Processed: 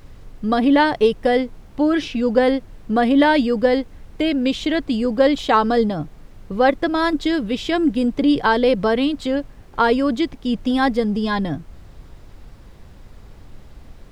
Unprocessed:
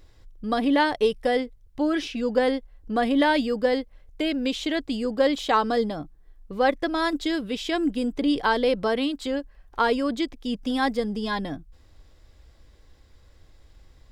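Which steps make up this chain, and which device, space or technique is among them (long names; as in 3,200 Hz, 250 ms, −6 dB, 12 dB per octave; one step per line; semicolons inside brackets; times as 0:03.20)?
car interior (parametric band 140 Hz +7 dB 1 octave; high-shelf EQ 4,800 Hz −6.5 dB; brown noise bed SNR 21 dB)
level +5.5 dB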